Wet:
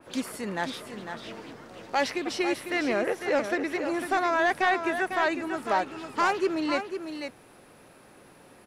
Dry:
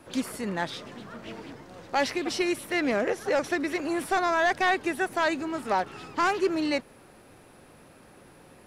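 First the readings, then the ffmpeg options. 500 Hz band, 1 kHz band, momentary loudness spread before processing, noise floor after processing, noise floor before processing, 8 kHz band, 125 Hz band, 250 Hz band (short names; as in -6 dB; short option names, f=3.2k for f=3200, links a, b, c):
0.0 dB, +0.5 dB, 17 LU, -54 dBFS, -54 dBFS, -2.0 dB, -3.0 dB, -1.0 dB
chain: -filter_complex "[0:a]lowshelf=f=160:g=-7,asplit=2[a][b];[b]aecho=0:1:500:0.398[c];[a][c]amix=inputs=2:normalize=0,adynamicequalizer=threshold=0.00794:dfrequency=3500:dqfactor=0.7:tfrequency=3500:tqfactor=0.7:attack=5:release=100:ratio=0.375:range=3:mode=cutabove:tftype=highshelf"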